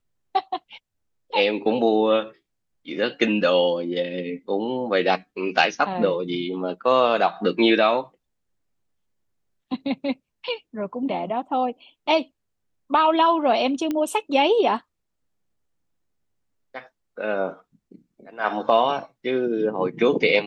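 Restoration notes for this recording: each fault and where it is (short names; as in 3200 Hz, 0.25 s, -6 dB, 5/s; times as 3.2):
13.91 pop -14 dBFS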